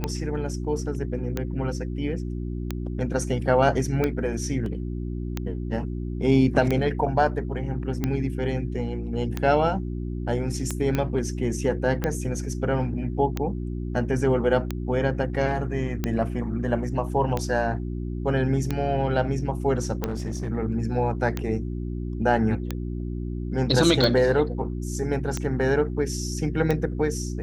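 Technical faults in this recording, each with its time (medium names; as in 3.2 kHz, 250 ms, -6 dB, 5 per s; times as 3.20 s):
hum 60 Hz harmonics 6 -30 dBFS
tick 45 rpm -12 dBFS
4.66 s: dropout 2.1 ms
10.95 s: pop -12 dBFS
20.00–20.50 s: clipped -24.5 dBFS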